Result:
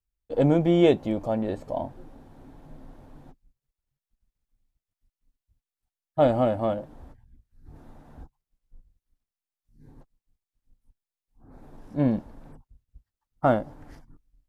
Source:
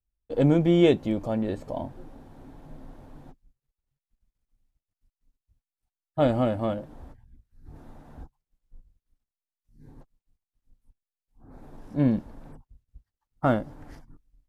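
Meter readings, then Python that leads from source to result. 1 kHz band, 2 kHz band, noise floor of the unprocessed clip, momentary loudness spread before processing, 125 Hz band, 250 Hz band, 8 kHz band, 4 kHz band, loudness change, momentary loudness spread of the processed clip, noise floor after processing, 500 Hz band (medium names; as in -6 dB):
+3.5 dB, -0.5 dB, under -85 dBFS, 16 LU, -1.5 dB, -0.5 dB, no reading, -1.5 dB, +0.5 dB, 14 LU, under -85 dBFS, +2.0 dB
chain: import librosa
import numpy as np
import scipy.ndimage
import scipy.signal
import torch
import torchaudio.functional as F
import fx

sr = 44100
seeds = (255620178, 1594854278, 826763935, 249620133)

y = fx.dynamic_eq(x, sr, hz=720.0, q=1.2, threshold_db=-39.0, ratio=4.0, max_db=6)
y = y * 10.0 ** (-1.5 / 20.0)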